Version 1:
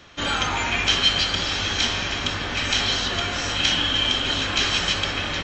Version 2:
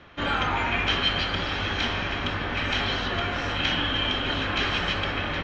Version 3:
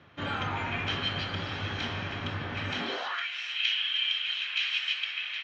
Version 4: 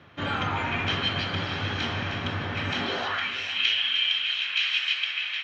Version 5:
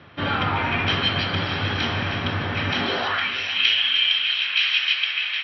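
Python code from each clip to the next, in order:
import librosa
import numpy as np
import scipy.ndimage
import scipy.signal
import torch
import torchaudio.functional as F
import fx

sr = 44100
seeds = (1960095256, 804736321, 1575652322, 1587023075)

y1 = scipy.signal.sosfilt(scipy.signal.butter(2, 2400.0, 'lowpass', fs=sr, output='sos'), x)
y2 = fx.filter_sweep_highpass(y1, sr, from_hz=110.0, to_hz=2600.0, start_s=2.7, end_s=3.28, q=2.6)
y2 = y2 * librosa.db_to_amplitude(-7.5)
y3 = fx.echo_alternate(y2, sr, ms=154, hz=2000.0, feedback_pct=71, wet_db=-9.5)
y3 = y3 * librosa.db_to_amplitude(4.0)
y4 = fx.brickwall_lowpass(y3, sr, high_hz=5900.0)
y4 = y4 * librosa.db_to_amplitude(5.0)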